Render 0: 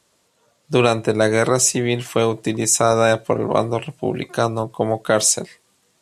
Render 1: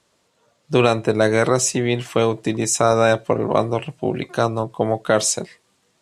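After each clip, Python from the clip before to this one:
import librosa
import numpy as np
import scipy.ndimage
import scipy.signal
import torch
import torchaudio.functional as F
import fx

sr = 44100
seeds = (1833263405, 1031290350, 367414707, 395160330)

y = fx.high_shelf(x, sr, hz=9100.0, db=-11.0)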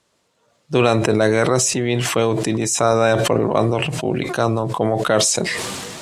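y = fx.sustainer(x, sr, db_per_s=24.0)
y = F.gain(torch.from_numpy(y), -1.0).numpy()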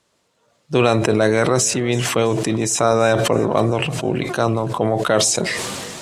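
y = fx.echo_feedback(x, sr, ms=330, feedback_pct=48, wet_db=-20.0)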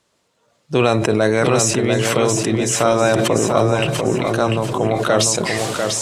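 y = fx.echo_feedback(x, sr, ms=694, feedback_pct=30, wet_db=-5)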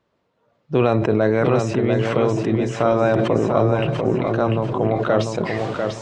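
y = fx.spacing_loss(x, sr, db_at_10k=32)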